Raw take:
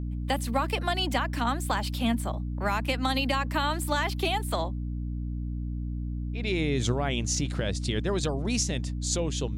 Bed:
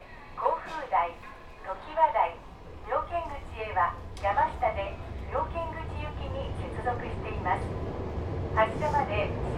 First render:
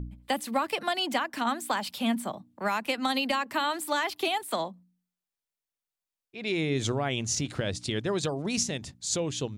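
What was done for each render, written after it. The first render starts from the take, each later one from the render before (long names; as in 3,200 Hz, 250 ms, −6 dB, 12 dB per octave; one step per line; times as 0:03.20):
hum removal 60 Hz, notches 5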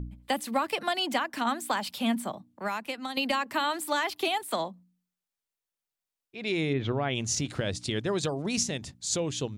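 0:02.23–0:03.17: fade out, to −9.5 dB
0:06.72–0:07.14: low-pass filter 2,400 Hz → 5,000 Hz 24 dB per octave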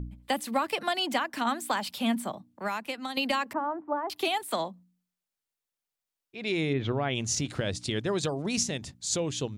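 0:03.53–0:04.10: low-pass filter 1,100 Hz 24 dB per octave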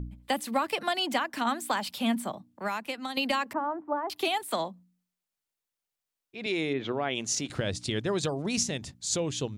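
0:06.46–0:07.50: high-pass filter 230 Hz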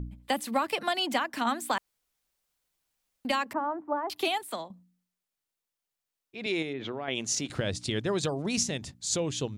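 0:01.78–0:03.25: fill with room tone
0:04.29–0:04.70: fade out, to −12 dB
0:06.62–0:07.08: downward compressor 3 to 1, threshold −32 dBFS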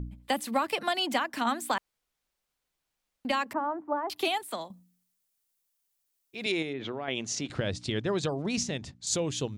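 0:01.74–0:03.37: high-shelf EQ 6,000 Hz −7 dB
0:04.61–0:06.52: high-shelf EQ 5,300 Hz +12 dB
0:07.12–0:09.07: high-frequency loss of the air 63 metres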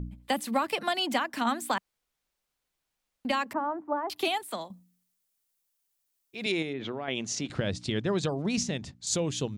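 dynamic equaliser 190 Hz, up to +4 dB, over −46 dBFS, Q 2.2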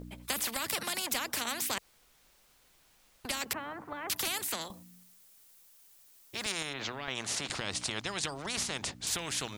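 every bin compressed towards the loudest bin 4 to 1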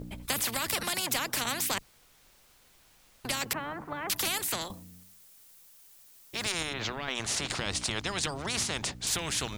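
sub-octave generator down 1 octave, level −3 dB
in parallel at −5.5 dB: soft clipping −27.5 dBFS, distortion −15 dB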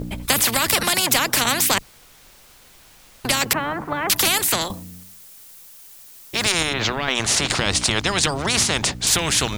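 level +12 dB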